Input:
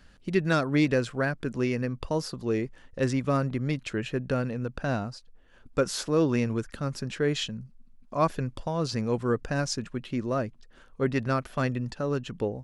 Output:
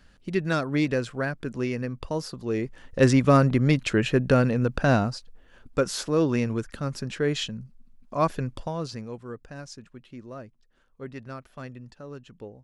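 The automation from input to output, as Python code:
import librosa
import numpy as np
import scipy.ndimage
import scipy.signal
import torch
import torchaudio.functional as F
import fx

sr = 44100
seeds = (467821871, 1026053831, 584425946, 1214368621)

y = fx.gain(x, sr, db=fx.line((2.48, -1.0), (3.02, 8.0), (5.06, 8.0), (5.84, 1.0), (8.62, 1.0), (9.21, -12.0)))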